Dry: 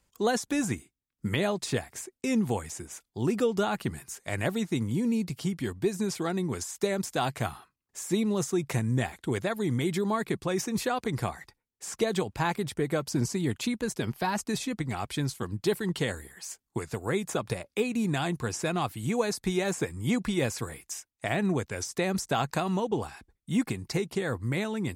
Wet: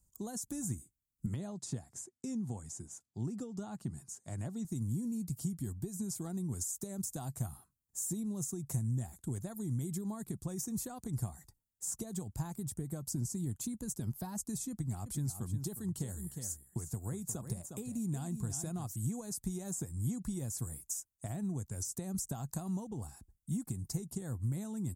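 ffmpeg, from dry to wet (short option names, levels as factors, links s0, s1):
-filter_complex "[0:a]asettb=1/sr,asplit=3[s0][s1][s2];[s0]atrim=end=1.264[s3];[s1]atrim=start=1.26:end=4.65,asetpts=PTS-STARTPTS,afade=t=in:d=0.004:c=qsin,afade=t=out:st=3.386:d=0.004:c=qsin,highpass=110,lowpass=6000[s4];[s2]atrim=start=4.646[s5];[s3][s4]acrossfade=d=0.004:c1=hsin:c2=qsin[s6];[s6][s5]acrossfade=d=0.004:c1=qsin:c2=hsin,asettb=1/sr,asplit=3[s7][s8][s9];[s7]atrim=end=14.704[s10];[s8]atrim=start=14.7:end=18.96,asetpts=PTS-STARTPTS,afade=t=in:d=0.004:c=qsin,afade=t=out:st=4.256:d=0.004:c=qsin,aecho=1:1:358:0.299,atrim=end_sample=187866[s11];[s9]atrim=start=18.956[s12];[s10][s11]acrossfade=d=0.004:c1=hsin:c2=qsin[s13];[s13][s12]acrossfade=d=0.004:c1=qsin:c2=hsin,highshelf=f=7900:g=5.5,acompressor=threshold=0.0355:ratio=6,firequalizer=gain_entry='entry(110,0);entry(450,-17);entry(700,-13);entry(2300,-27);entry(7000,-2)':delay=0.05:min_phase=1,volume=1.12"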